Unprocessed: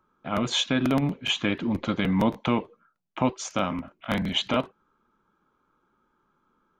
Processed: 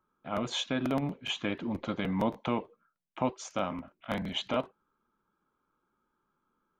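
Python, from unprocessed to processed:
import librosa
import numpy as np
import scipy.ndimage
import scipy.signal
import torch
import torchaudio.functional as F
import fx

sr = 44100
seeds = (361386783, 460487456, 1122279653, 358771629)

y = fx.dynamic_eq(x, sr, hz=660.0, q=0.86, threshold_db=-38.0, ratio=4.0, max_db=5)
y = y * 10.0 ** (-8.5 / 20.0)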